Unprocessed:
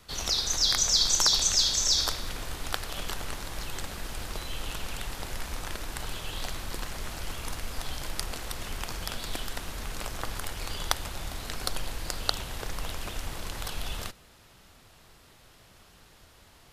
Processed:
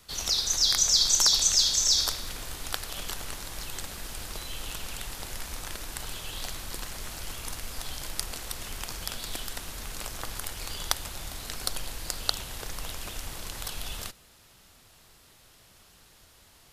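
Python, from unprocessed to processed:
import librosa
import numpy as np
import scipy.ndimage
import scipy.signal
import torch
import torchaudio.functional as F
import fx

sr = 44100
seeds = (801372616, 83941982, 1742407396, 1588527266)

y = fx.high_shelf(x, sr, hz=3900.0, db=8.0)
y = y * 10.0 ** (-3.5 / 20.0)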